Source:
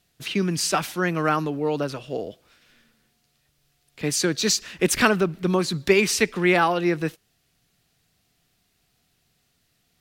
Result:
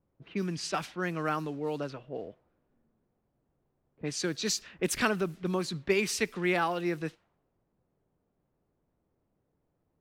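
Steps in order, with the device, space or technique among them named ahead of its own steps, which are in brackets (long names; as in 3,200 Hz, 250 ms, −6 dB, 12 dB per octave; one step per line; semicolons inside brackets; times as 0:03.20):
cassette deck with a dynamic noise filter (white noise bed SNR 28 dB; low-pass that shuts in the quiet parts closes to 420 Hz, open at −18.5 dBFS)
level −9 dB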